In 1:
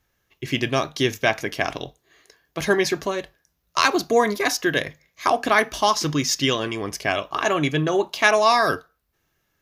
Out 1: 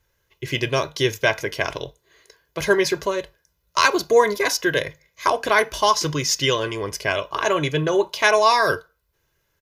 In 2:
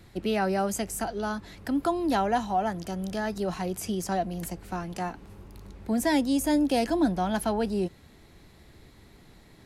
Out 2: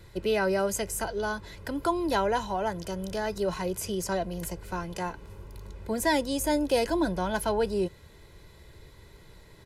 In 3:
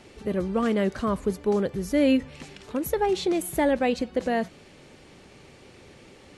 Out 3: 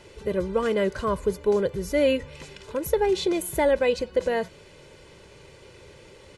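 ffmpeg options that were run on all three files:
ffmpeg -i in.wav -af "aecho=1:1:2:0.62" out.wav

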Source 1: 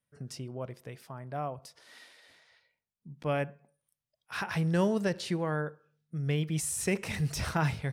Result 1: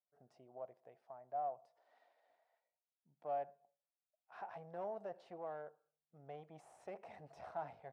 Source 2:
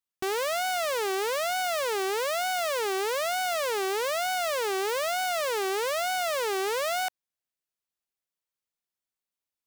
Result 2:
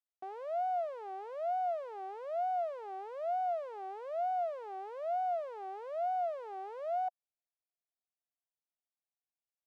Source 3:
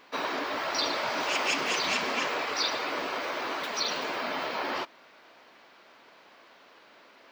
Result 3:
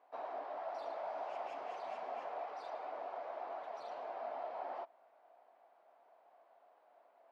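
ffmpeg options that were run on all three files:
ffmpeg -i in.wav -af "aeval=exprs='(tanh(22.4*val(0)+0.45)-tanh(0.45))/22.4':channel_layout=same,bandpass=frequency=710:width_type=q:width=6:csg=0,volume=1dB" out.wav

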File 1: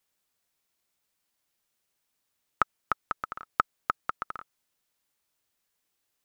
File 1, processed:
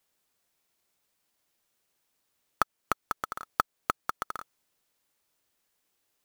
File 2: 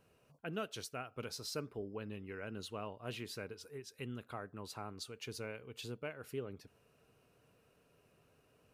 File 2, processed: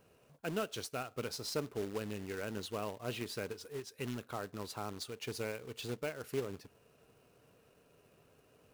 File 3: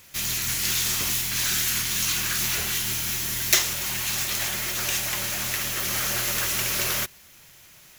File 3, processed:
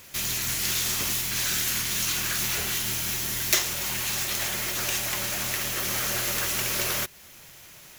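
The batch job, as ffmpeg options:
ffmpeg -i in.wav -filter_complex "[0:a]asplit=2[link_01][link_02];[link_02]acompressor=threshold=-35dB:ratio=5,volume=2dB[link_03];[link_01][link_03]amix=inputs=2:normalize=0,acrusher=bits=2:mode=log:mix=0:aa=0.000001,equalizer=frequency=450:width=0.63:gain=3,volume=-5dB" out.wav

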